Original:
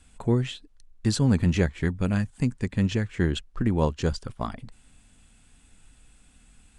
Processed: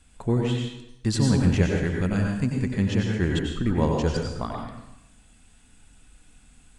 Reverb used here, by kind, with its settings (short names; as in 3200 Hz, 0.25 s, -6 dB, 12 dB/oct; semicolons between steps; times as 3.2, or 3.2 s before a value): plate-style reverb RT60 0.84 s, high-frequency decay 0.85×, pre-delay 80 ms, DRR 0 dB; gain -1 dB